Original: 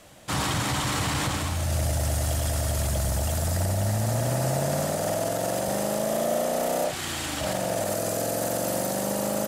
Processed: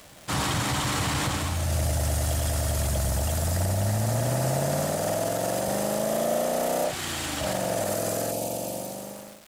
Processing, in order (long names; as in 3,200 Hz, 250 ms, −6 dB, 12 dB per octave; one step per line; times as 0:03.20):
fade-out on the ending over 1.37 s
healed spectral selection 0:08.34–0:09.15, 990–2,200 Hz after
surface crackle 500 per second −37 dBFS